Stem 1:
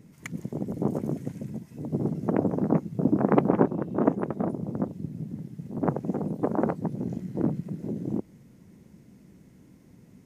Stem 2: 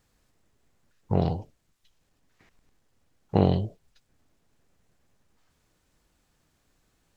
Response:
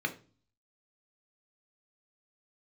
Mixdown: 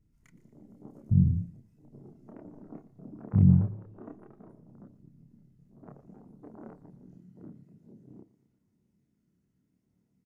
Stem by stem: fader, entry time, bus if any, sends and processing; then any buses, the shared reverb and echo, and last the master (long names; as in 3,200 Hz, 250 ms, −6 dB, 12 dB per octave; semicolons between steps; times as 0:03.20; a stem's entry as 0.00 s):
−19.5 dB, 0.00 s, send −17.5 dB, echo send −19 dB, multi-voice chorus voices 2, 0.3 Hz, delay 29 ms, depth 1.9 ms; notch filter 520 Hz, Q 12
+1.0 dB, 0.00 s, send −8 dB, no echo send, inverse Chebyshev low-pass filter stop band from 550 Hz, stop band 50 dB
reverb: on, RT60 0.40 s, pre-delay 3 ms
echo: repeating echo 117 ms, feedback 48%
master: no processing